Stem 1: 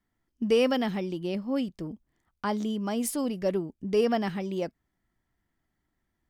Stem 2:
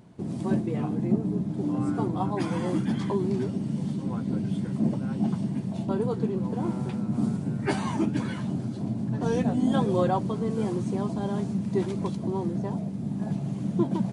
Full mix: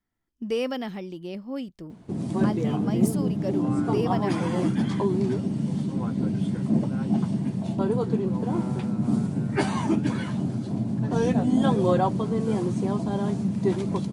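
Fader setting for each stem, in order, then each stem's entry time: -4.0 dB, +2.5 dB; 0.00 s, 1.90 s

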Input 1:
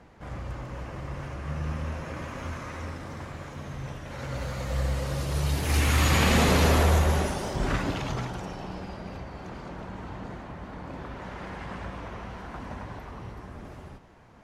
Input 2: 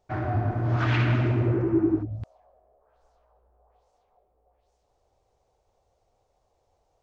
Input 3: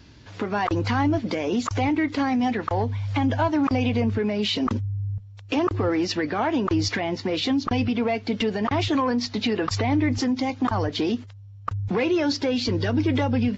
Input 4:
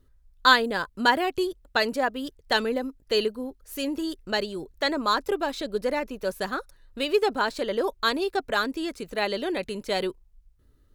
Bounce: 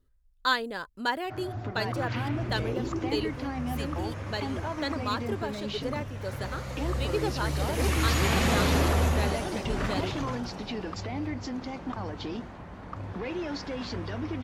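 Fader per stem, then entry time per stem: -3.5 dB, -11.0 dB, -12.0 dB, -8.0 dB; 2.10 s, 1.20 s, 1.25 s, 0.00 s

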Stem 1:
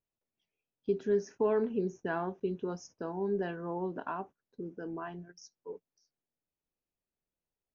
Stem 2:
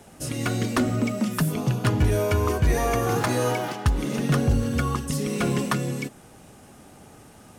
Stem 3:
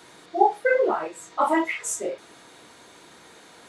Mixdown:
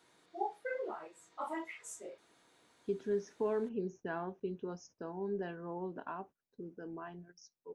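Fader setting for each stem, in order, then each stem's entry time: -5.5 dB, mute, -18.5 dB; 2.00 s, mute, 0.00 s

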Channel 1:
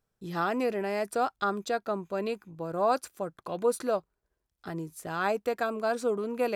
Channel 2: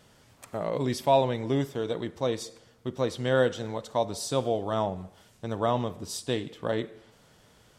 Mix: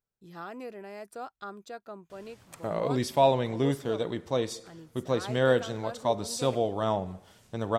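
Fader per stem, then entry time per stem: -12.0 dB, 0.0 dB; 0.00 s, 2.10 s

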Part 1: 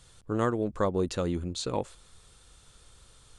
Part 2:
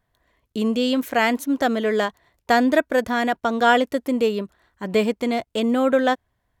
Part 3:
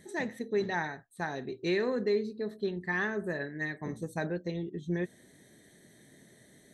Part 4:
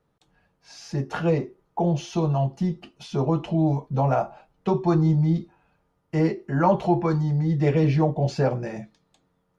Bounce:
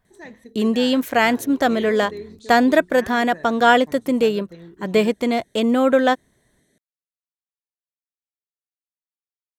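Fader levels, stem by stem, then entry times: -13.5 dB, +2.5 dB, -6.0 dB, mute; 0.85 s, 0.00 s, 0.05 s, mute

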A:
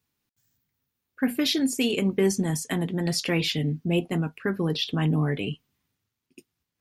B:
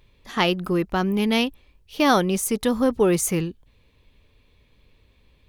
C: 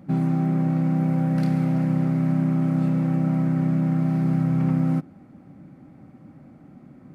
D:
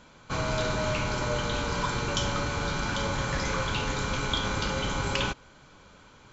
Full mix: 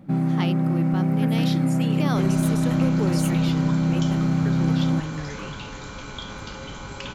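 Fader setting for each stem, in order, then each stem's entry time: -9.0 dB, -10.5 dB, 0.0 dB, -7.0 dB; 0.00 s, 0.00 s, 0.00 s, 1.85 s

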